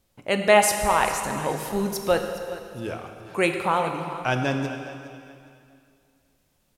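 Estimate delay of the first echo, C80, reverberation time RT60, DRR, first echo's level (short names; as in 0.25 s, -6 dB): 0.414 s, 6.5 dB, 2.3 s, 4.5 dB, -15.5 dB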